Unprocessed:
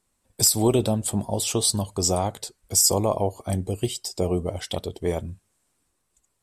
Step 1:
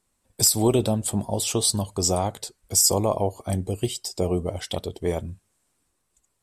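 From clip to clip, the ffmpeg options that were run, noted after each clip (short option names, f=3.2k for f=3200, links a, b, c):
-af anull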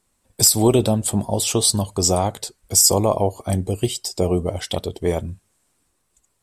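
-af "asoftclip=type=hard:threshold=-7.5dB,volume=4.5dB"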